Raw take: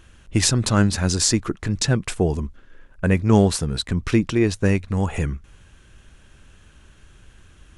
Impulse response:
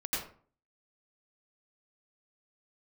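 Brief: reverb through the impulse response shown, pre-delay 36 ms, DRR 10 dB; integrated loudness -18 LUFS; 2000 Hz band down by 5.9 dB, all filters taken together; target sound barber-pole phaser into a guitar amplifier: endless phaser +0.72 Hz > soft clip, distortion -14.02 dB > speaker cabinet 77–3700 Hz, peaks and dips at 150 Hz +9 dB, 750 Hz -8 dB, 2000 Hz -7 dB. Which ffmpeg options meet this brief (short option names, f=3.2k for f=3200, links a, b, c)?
-filter_complex "[0:a]equalizer=f=2k:t=o:g=-4.5,asplit=2[a][b];[1:a]atrim=start_sample=2205,adelay=36[c];[b][c]afir=irnorm=-1:irlink=0,volume=-15dB[d];[a][d]amix=inputs=2:normalize=0,asplit=2[e][f];[f]afreqshift=0.72[g];[e][g]amix=inputs=2:normalize=1,asoftclip=threshold=-15dB,highpass=77,equalizer=f=150:t=q:w=4:g=9,equalizer=f=750:t=q:w=4:g=-8,equalizer=f=2k:t=q:w=4:g=-7,lowpass=f=3.7k:w=0.5412,lowpass=f=3.7k:w=1.3066,volume=7dB"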